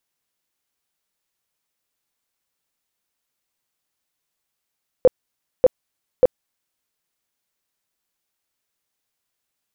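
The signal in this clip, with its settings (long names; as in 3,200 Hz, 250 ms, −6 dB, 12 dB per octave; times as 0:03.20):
tone bursts 510 Hz, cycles 13, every 0.59 s, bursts 3, −7 dBFS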